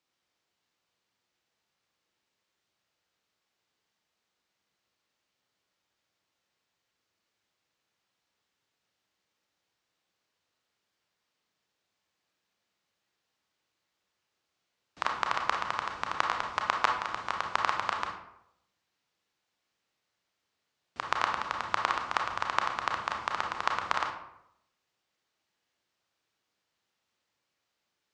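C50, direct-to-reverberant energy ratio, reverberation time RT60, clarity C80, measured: 5.5 dB, 2.5 dB, 0.80 s, 9.0 dB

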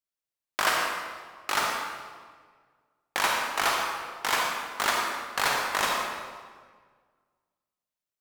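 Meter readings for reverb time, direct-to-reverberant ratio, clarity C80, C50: 1.7 s, −1.0 dB, 1.5 dB, −0.5 dB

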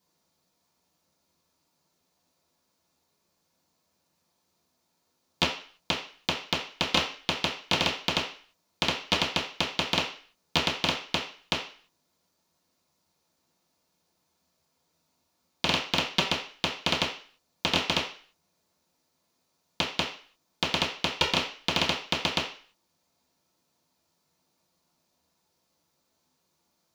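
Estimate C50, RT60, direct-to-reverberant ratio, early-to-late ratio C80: 7.5 dB, 0.40 s, −10.0 dB, 12.0 dB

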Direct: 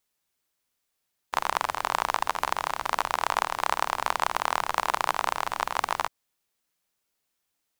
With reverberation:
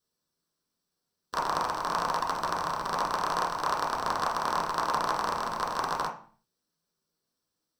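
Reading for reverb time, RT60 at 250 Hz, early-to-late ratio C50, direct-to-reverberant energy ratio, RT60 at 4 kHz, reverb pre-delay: 0.45 s, 0.70 s, 9.0 dB, −1.5 dB, 0.40 s, 3 ms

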